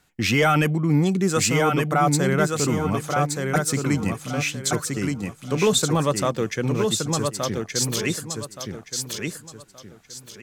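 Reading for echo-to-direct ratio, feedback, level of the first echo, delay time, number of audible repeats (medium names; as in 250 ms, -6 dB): -3.5 dB, 28%, -4.0 dB, 1173 ms, 3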